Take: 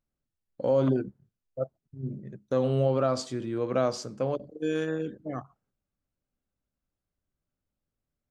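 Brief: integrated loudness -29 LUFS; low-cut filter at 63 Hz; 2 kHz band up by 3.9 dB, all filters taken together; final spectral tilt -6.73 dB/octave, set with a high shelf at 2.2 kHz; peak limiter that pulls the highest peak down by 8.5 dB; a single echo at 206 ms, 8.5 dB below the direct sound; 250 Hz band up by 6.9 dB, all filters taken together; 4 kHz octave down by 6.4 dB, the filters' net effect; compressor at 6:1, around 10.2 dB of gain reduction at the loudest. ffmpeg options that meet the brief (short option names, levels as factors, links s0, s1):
-af "highpass=63,equalizer=f=250:t=o:g=8,equalizer=f=2000:t=o:g=9,highshelf=f=2200:g=-5,equalizer=f=4000:t=o:g=-6,acompressor=threshold=0.0501:ratio=6,alimiter=level_in=1.06:limit=0.0631:level=0:latency=1,volume=0.944,aecho=1:1:206:0.376,volume=1.88"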